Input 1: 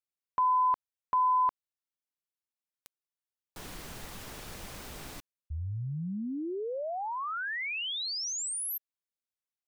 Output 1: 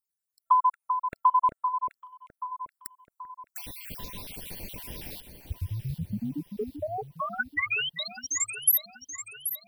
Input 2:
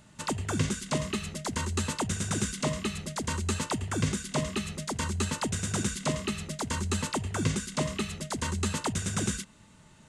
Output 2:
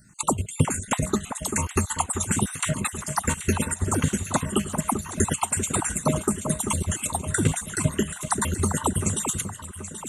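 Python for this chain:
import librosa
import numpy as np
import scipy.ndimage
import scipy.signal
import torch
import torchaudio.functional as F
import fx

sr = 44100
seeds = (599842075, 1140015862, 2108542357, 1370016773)

p1 = fx.spec_dropout(x, sr, seeds[0], share_pct=53)
p2 = fx.high_shelf(p1, sr, hz=5200.0, db=10.5)
p3 = fx.level_steps(p2, sr, step_db=17)
p4 = p2 + (p3 * librosa.db_to_amplitude(2.0))
p5 = fx.transient(p4, sr, attack_db=6, sustain_db=1)
p6 = fx.env_phaser(p5, sr, low_hz=480.0, high_hz=5000.0, full_db=-27.5)
y = fx.echo_alternate(p6, sr, ms=390, hz=1600.0, feedback_pct=66, wet_db=-7)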